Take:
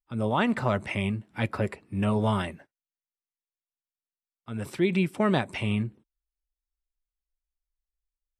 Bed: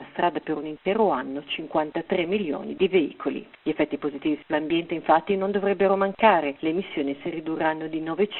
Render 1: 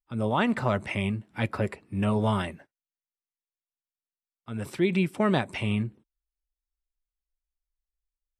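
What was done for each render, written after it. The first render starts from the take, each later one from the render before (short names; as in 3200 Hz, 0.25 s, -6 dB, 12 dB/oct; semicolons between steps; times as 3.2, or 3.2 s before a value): nothing audible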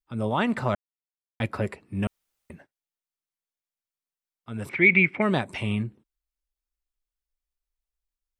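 0.75–1.4 mute; 2.07–2.5 room tone; 4.69–5.22 synth low-pass 2200 Hz, resonance Q 13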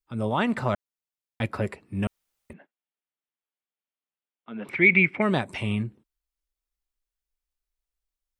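2.53–4.69 elliptic band-pass 190–3200 Hz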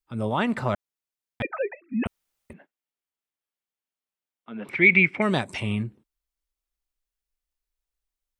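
1.42–2.06 sine-wave speech; 4.75–5.6 bell 6400 Hz +7.5 dB 1.5 oct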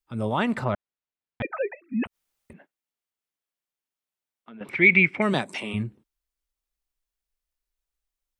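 0.64–1.51 air absorption 200 m; 2.05–4.61 compressor, threshold -41 dBFS; 5.33–5.73 HPF 120 Hz -> 260 Hz 24 dB/oct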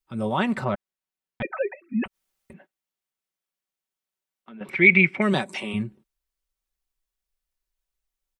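comb 5.3 ms, depth 40%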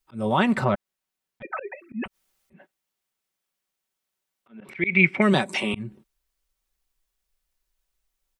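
in parallel at +0.5 dB: compressor, threshold -28 dBFS, peak gain reduction 16.5 dB; on the sum: auto swell 0.202 s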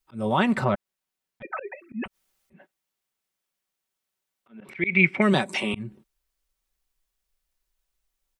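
gain -1 dB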